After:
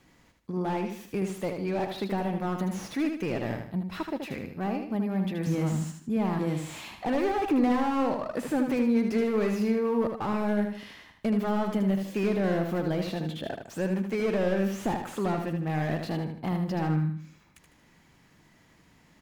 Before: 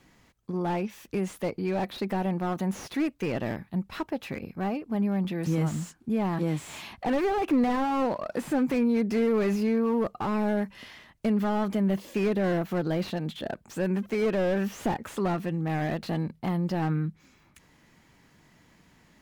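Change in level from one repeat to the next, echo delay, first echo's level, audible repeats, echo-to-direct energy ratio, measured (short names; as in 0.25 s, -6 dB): -8.5 dB, 77 ms, -6.0 dB, 4, -5.5 dB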